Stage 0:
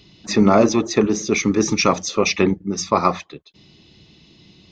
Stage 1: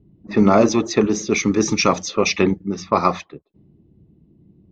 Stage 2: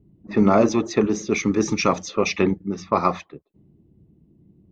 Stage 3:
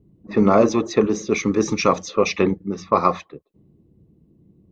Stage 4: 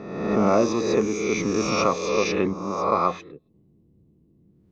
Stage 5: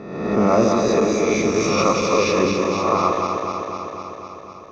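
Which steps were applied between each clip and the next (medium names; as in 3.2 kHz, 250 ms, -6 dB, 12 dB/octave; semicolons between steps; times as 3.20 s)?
level-controlled noise filter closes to 310 Hz, open at -15.5 dBFS
peaking EQ 5 kHz -4.5 dB 1.4 oct; trim -2.5 dB
small resonant body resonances 490/1100/3900 Hz, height 6 dB, ringing for 25 ms
reverse spectral sustain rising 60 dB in 1.14 s; trim -7 dB
backward echo that repeats 126 ms, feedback 83%, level -5 dB; trim +2 dB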